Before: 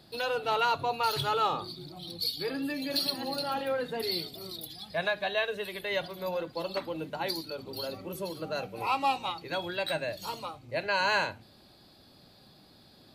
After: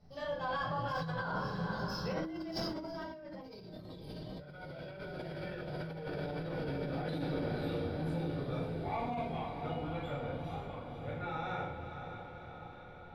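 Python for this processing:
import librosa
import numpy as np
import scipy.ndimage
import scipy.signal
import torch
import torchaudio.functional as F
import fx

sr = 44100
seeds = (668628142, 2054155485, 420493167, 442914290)

p1 = fx.doppler_pass(x, sr, speed_mps=51, closest_m=12.0, pass_at_s=3.75)
p2 = fx.riaa(p1, sr, side='playback')
p3 = fx.hum_notches(p2, sr, base_hz=50, count=4)
p4 = p3 + fx.echo_diffused(p3, sr, ms=521, feedback_pct=67, wet_db=-8, dry=0)
p5 = fx.room_shoebox(p4, sr, seeds[0], volume_m3=830.0, walls='furnished', distance_m=6.7)
p6 = fx.over_compress(p5, sr, threshold_db=-42.0, ratio=-1.0)
y = F.gain(torch.from_numpy(p6), 2.0).numpy()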